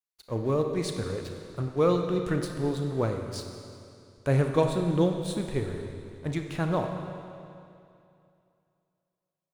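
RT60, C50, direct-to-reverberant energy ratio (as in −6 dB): 2.6 s, 5.0 dB, 4.0 dB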